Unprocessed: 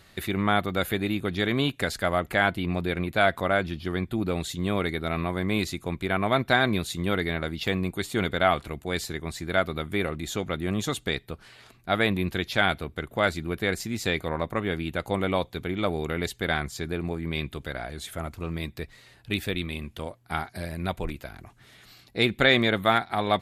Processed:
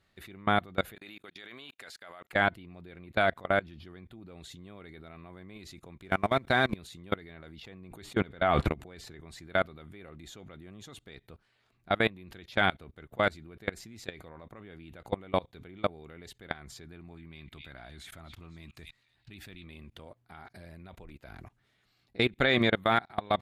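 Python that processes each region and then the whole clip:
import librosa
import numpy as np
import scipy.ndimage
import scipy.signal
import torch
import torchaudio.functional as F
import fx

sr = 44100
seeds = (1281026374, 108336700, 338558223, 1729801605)

y = fx.chain(x, sr, fx.highpass(hz=1400.0, slope=6),
    fx.level_steps(step_db=21), at=(0.95, 2.33))
y = fx.chain(y, sr, fx.law_mismatch(coded='mu'),
    fx.peak_eq(hz=8900.0, db=5.5, octaves=0.39), at=(6.04, 6.76))
y = fx.chain(y, sr, fx.high_shelf(hz=3500.0, db=-6.5),
    fx.sustainer(db_per_s=22.0), at=(7.62, 9.21))
y = fx.chain(y, sr, fx.peak_eq(hz=480.0, db=-8.0, octaves=0.62),
    fx.echo_stepped(ms=251, hz=3200.0, octaves=0.7, feedback_pct=70, wet_db=-5.5), at=(16.85, 19.64))
y = fx.high_shelf(y, sr, hz=6500.0, db=-9.5)
y = fx.level_steps(y, sr, step_db=24)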